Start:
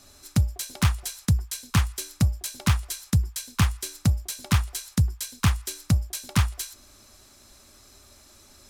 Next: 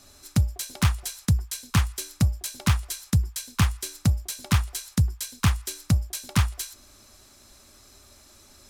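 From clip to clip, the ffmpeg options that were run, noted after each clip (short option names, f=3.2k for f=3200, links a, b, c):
-af anull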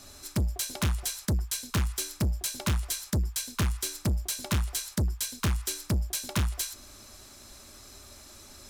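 -af "asoftclip=type=tanh:threshold=-26.5dB,volume=3.5dB"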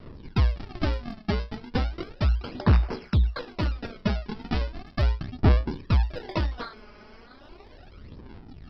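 -af "aresample=11025,acrusher=samples=13:mix=1:aa=0.000001:lfo=1:lforange=20.8:lforate=0.25,aresample=44100,aphaser=in_gain=1:out_gain=1:delay=4.8:decay=0.58:speed=0.36:type=sinusoidal,volume=1.5dB"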